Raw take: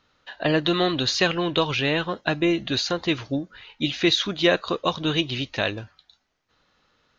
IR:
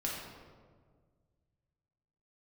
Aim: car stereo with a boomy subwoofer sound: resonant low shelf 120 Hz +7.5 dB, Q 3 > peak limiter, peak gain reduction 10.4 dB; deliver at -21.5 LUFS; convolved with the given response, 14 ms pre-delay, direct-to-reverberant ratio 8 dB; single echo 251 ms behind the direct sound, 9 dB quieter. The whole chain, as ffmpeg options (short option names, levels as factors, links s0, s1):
-filter_complex "[0:a]aecho=1:1:251:0.355,asplit=2[s0][s1];[1:a]atrim=start_sample=2205,adelay=14[s2];[s1][s2]afir=irnorm=-1:irlink=0,volume=0.266[s3];[s0][s3]amix=inputs=2:normalize=0,lowshelf=f=120:t=q:w=3:g=7.5,volume=2,alimiter=limit=0.251:level=0:latency=1"